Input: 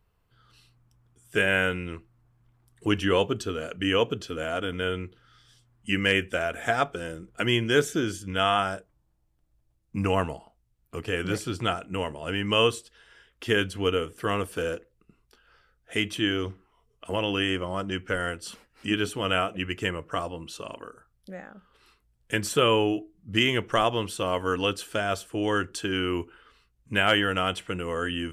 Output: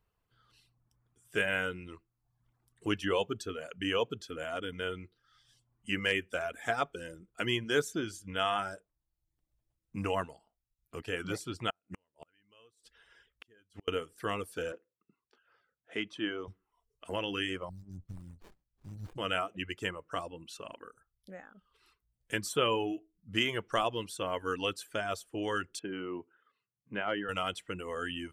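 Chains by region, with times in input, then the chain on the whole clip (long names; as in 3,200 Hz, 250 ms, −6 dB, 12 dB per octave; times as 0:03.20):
0:11.70–0:13.88: gate with flip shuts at −25 dBFS, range −33 dB + highs frequency-modulated by the lows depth 0.26 ms
0:14.72–0:16.48: band-pass filter 180–6,800 Hz + high-shelf EQ 3,500 Hz −10.5 dB
0:17.69–0:19.18: linear-phase brick-wall band-stop 190–4,000 Hz + low-shelf EQ 150 Hz +8.5 dB + windowed peak hold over 65 samples
0:25.79–0:27.29: high-pass filter 130 Hz 24 dB per octave + head-to-tape spacing loss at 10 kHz 38 dB
whole clip: reverb reduction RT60 0.65 s; low-shelf EQ 210 Hz −4 dB; level −6 dB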